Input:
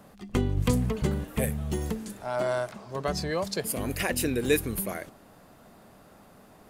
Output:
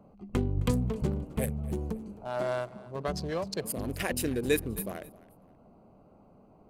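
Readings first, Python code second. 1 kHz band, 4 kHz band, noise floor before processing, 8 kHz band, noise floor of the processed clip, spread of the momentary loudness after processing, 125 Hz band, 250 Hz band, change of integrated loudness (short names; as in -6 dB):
-4.0 dB, -5.0 dB, -54 dBFS, -5.0 dB, -58 dBFS, 9 LU, -2.5 dB, -2.5 dB, -3.0 dB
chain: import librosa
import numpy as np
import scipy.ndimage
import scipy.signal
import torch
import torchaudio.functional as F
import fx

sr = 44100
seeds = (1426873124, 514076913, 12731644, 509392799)

y = fx.wiener(x, sr, points=25)
y = fx.echo_feedback(y, sr, ms=264, feedback_pct=28, wet_db=-20.0)
y = y * 10.0 ** (-2.5 / 20.0)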